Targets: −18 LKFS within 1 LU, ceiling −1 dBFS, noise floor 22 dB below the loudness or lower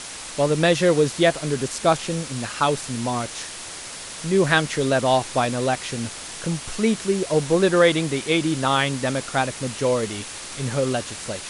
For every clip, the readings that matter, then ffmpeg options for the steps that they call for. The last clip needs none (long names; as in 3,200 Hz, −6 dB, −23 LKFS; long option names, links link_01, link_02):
background noise floor −36 dBFS; target noise floor −44 dBFS; integrated loudness −22.0 LKFS; sample peak −2.0 dBFS; target loudness −18.0 LKFS
→ -af "afftdn=noise_reduction=8:noise_floor=-36"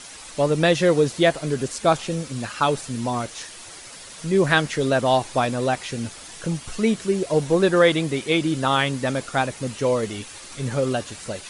background noise floor −41 dBFS; target noise floor −44 dBFS
→ -af "afftdn=noise_reduction=6:noise_floor=-41"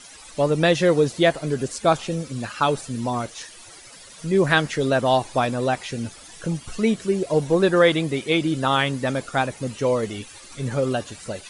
background noise floor −44 dBFS; integrated loudness −22.0 LKFS; sample peak −2.5 dBFS; target loudness −18.0 LKFS
→ -af "volume=4dB,alimiter=limit=-1dB:level=0:latency=1"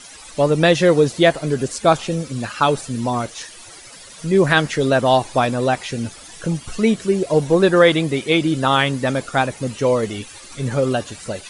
integrated loudness −18.0 LKFS; sample peak −1.0 dBFS; background noise floor −40 dBFS